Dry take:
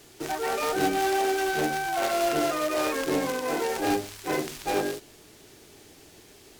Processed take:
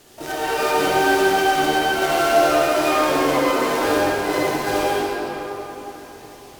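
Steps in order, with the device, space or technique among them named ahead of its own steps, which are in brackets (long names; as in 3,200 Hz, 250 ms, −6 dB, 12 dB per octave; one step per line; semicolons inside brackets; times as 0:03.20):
shimmer-style reverb (pitch-shifted copies added +12 semitones −5 dB; convolution reverb RT60 3.9 s, pre-delay 45 ms, DRR −6.5 dB)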